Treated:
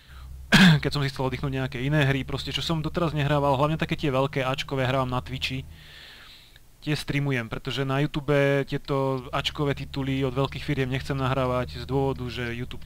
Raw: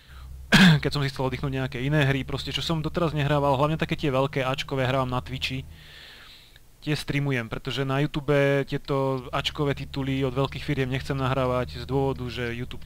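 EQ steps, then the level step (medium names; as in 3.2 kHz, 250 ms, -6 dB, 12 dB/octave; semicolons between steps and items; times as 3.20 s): band-stop 480 Hz, Q 12; 0.0 dB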